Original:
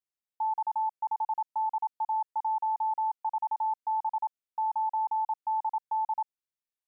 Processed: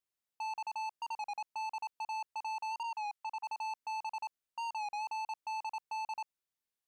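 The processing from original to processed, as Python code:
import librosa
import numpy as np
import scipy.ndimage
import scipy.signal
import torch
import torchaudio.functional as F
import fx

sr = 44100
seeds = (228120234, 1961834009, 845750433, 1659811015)

y = fx.highpass(x, sr, hz=830.0, slope=24, at=(2.83, 3.42), fade=0.02)
y = 10.0 ** (-38.0 / 20.0) * np.tanh(y / 10.0 ** (-38.0 / 20.0))
y = fx.record_warp(y, sr, rpm=33.33, depth_cents=100.0)
y = F.gain(torch.from_numpy(y), 1.5).numpy()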